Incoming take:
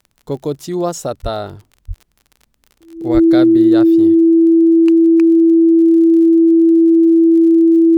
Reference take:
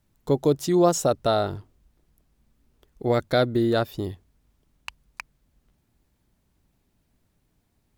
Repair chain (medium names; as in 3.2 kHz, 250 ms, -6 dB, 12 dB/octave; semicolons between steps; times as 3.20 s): de-click; band-stop 330 Hz, Q 30; 1.22–1.34 s: high-pass 140 Hz 24 dB/octave; 1.87–1.99 s: high-pass 140 Hz 24 dB/octave; 3.13–3.25 s: high-pass 140 Hz 24 dB/octave